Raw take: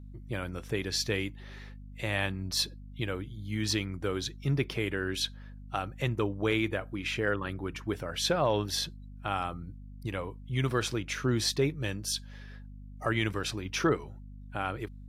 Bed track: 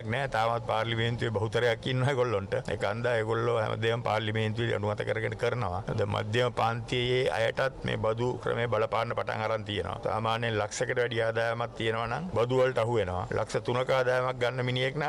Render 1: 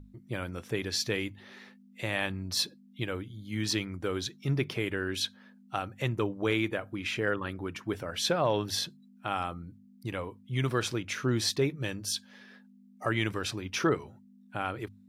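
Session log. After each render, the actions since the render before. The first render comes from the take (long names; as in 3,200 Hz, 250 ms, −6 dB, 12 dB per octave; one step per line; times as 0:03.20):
mains-hum notches 50/100/150 Hz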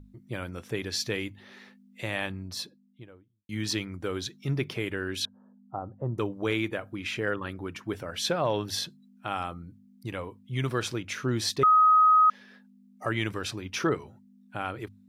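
0:02.07–0:03.49: fade out and dull
0:05.25–0:06.18: inverse Chebyshev low-pass filter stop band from 2,100 Hz
0:11.63–0:12.30: beep over 1,260 Hz −15.5 dBFS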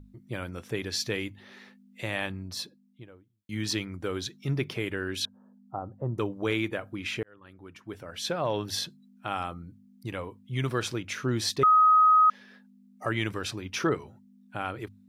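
0:07.23–0:08.76: fade in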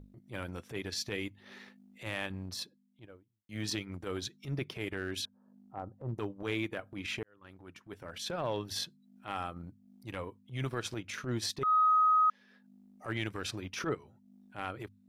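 downward compressor 1.5 to 1, threshold −35 dBFS, peak gain reduction 6 dB
transient designer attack −12 dB, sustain −8 dB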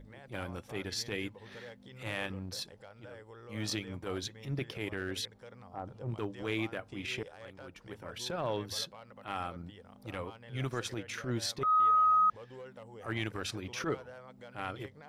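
mix in bed track −23 dB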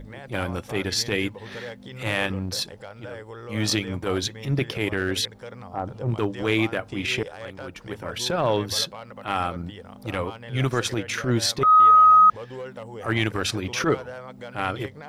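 level +12 dB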